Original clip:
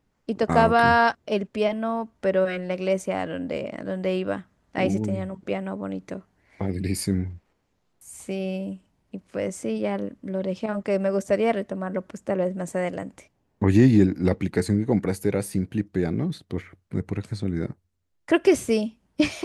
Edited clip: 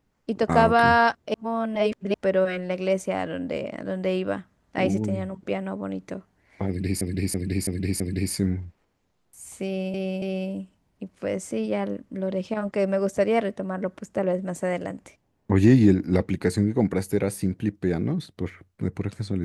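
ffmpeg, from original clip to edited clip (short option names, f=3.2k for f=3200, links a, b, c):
-filter_complex "[0:a]asplit=9[a][b][c][d][e][f][g][h][i];[a]atrim=end=1.342[j];[b]atrim=start=1.338:end=2.142,asetpts=PTS-STARTPTS,areverse[k];[c]atrim=start=2.138:end=7.012[l];[d]atrim=start=6.678:end=7.012[m];[e]atrim=start=6.678:end=7.012[n];[f]atrim=start=6.678:end=7.012[o];[g]atrim=start=6.678:end=8.622[p];[h]atrim=start=8.338:end=8.622[q];[i]atrim=start=8.338[r];[j][k]acrossfade=d=0.004:c1=hsin:c2=hsin[s];[s][l]acrossfade=d=0.004:c1=hsin:c2=hsin[t];[t][m]acrossfade=d=0.004:c1=hsin:c2=hsin[u];[u][n]acrossfade=d=0.004:c1=hsin:c2=hsin[v];[v][o]acrossfade=d=0.004:c1=hsin:c2=hsin[w];[w][p]acrossfade=d=0.004:c1=hsin:c2=hsin[x];[x][q]acrossfade=d=0.004:c1=hsin:c2=hsin[y];[y][r]acrossfade=d=0.004:c1=hsin:c2=hsin"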